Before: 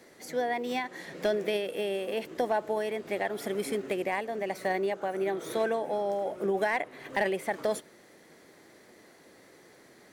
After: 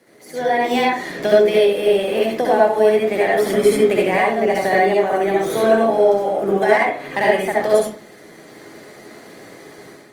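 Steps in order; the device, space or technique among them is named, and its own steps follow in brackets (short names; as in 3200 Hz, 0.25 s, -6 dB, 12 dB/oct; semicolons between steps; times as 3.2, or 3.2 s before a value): far-field microphone of a smart speaker (reverb RT60 0.40 s, pre-delay 60 ms, DRR -4 dB; HPF 95 Hz 24 dB/oct; AGC gain up to 10 dB; Opus 32 kbps 48000 Hz)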